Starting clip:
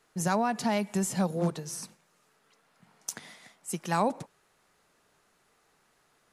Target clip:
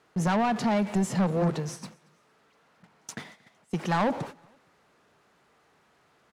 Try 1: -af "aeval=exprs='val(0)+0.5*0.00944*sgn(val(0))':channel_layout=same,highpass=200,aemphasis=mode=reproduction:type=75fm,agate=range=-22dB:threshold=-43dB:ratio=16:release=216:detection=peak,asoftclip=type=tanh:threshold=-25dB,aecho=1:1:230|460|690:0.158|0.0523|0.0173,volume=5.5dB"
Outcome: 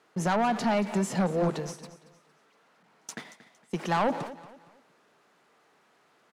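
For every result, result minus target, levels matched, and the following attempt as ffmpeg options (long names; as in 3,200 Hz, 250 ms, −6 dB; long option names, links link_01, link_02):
echo-to-direct +10.5 dB; 125 Hz band −2.5 dB
-af "aeval=exprs='val(0)+0.5*0.00944*sgn(val(0))':channel_layout=same,highpass=200,aemphasis=mode=reproduction:type=75fm,agate=range=-22dB:threshold=-43dB:ratio=16:release=216:detection=peak,asoftclip=type=tanh:threshold=-25dB,aecho=1:1:230|460:0.0473|0.0156,volume=5.5dB"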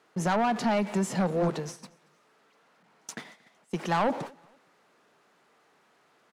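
125 Hz band −2.5 dB
-af "aeval=exprs='val(0)+0.5*0.00944*sgn(val(0))':channel_layout=same,highpass=65,aemphasis=mode=reproduction:type=75fm,agate=range=-22dB:threshold=-43dB:ratio=16:release=216:detection=peak,asoftclip=type=tanh:threshold=-25dB,aecho=1:1:230|460:0.0473|0.0156,volume=5.5dB"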